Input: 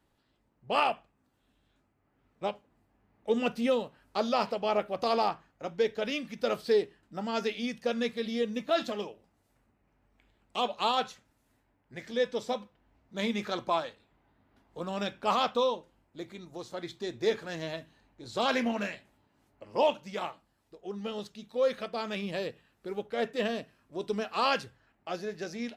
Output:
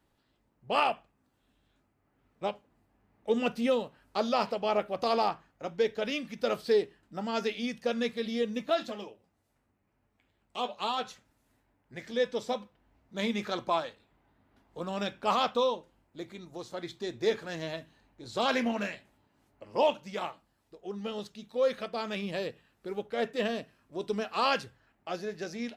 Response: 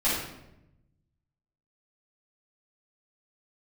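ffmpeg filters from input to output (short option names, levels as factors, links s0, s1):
-filter_complex "[0:a]asplit=3[s0][s1][s2];[s0]afade=t=out:st=8.74:d=0.02[s3];[s1]flanger=delay=8.3:depth=5.2:regen=-41:speed=1:shape=triangular,afade=t=in:st=8.74:d=0.02,afade=t=out:st=11.06:d=0.02[s4];[s2]afade=t=in:st=11.06:d=0.02[s5];[s3][s4][s5]amix=inputs=3:normalize=0"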